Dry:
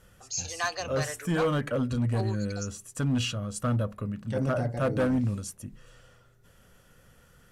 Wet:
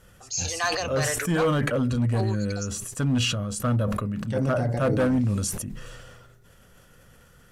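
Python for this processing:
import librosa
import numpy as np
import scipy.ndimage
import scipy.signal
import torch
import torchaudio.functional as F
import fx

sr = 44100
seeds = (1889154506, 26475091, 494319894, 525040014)

y = fx.sustainer(x, sr, db_per_s=30.0)
y = F.gain(torch.from_numpy(y), 3.0).numpy()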